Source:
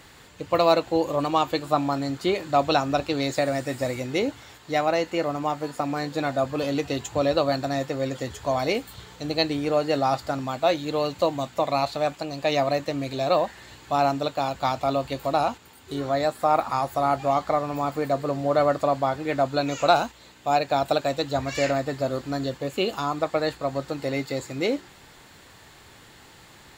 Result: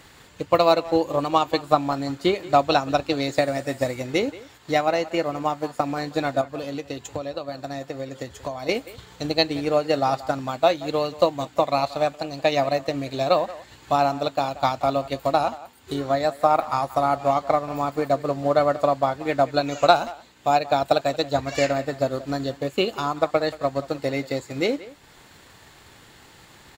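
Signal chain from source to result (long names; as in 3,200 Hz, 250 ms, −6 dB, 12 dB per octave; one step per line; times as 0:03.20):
transient designer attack +5 dB, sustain −4 dB
0:06.41–0:08.69: downward compressor 6 to 1, threshold −28 dBFS, peak gain reduction 13 dB
far-end echo of a speakerphone 180 ms, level −17 dB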